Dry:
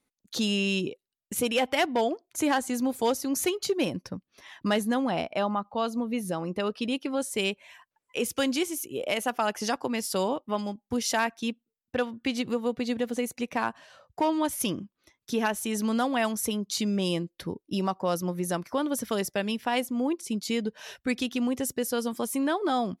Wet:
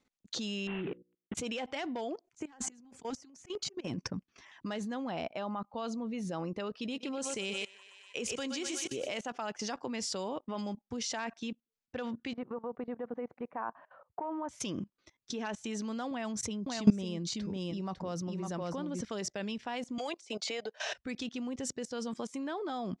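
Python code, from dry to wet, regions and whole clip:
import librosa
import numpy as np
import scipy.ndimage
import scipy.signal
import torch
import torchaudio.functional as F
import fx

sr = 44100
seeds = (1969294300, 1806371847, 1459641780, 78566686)

y = fx.chain(x, sr, fx.cvsd(bps=16000),
    fx.hum_notches(base_hz=60, count=9), at=(0.67, 1.35))
y = fx.chain(y, sr, fx.auto_swell(attack_ms=320.0),
    fx.over_compress(threshold_db=-37.0, ratio=-0.5),
    fx.filter_lfo_notch(shape='square', hz=7.8, low_hz=550.0, high_hz=3900.0, q=1.4), at=(2.27, 4.6))
y = fx.chain(y, sr, fx.high_shelf(hz=5200.0, db=5.5),
    fx.echo_thinned(ms=123, feedback_pct=59, hz=520.0, wet_db=-9), at=(6.81, 9.2))
y = fx.chain(y, sr, fx.lowpass(hz=1200.0, slope=24),
    fx.tilt_eq(slope=4.5), at=(12.33, 14.49))
y = fx.chain(y, sr, fx.low_shelf(hz=230.0, db=9.5),
    fx.echo_single(ms=552, db=-5.5), at=(16.11, 19.01))
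y = fx.chain(y, sr, fx.highpass_res(hz=700.0, q=3.4),
    fx.peak_eq(hz=920.0, db=-7.5, octaves=0.46),
    fx.band_squash(depth_pct=100), at=(19.98, 20.93))
y = scipy.signal.sosfilt(scipy.signal.butter(6, 7600.0, 'lowpass', fs=sr, output='sos'), y)
y = fx.level_steps(y, sr, step_db=20)
y = y * 10.0 ** (3.5 / 20.0)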